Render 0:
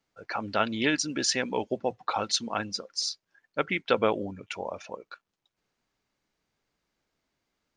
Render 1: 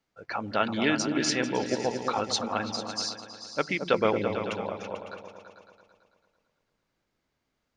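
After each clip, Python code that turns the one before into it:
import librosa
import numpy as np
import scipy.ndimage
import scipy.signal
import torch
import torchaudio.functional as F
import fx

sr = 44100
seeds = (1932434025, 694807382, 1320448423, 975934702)

y = fx.high_shelf(x, sr, hz=4900.0, db=-4.0)
y = fx.echo_opening(y, sr, ms=111, hz=200, octaves=2, feedback_pct=70, wet_db=-3)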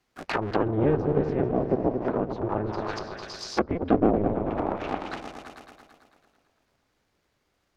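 y = fx.cycle_switch(x, sr, every=2, mode='inverted')
y = fx.env_lowpass_down(y, sr, base_hz=560.0, full_db=-26.0)
y = y * 10.0 ** (6.0 / 20.0)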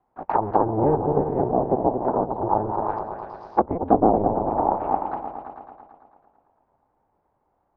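y = fx.lowpass_res(x, sr, hz=870.0, q=4.5)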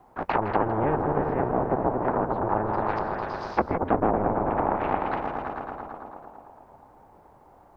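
y = x + 10.0 ** (-14.5 / 20.0) * np.pad(x, (int(161 * sr / 1000.0), 0))[:len(x)]
y = fx.spectral_comp(y, sr, ratio=2.0)
y = y * 10.0 ** (-5.5 / 20.0)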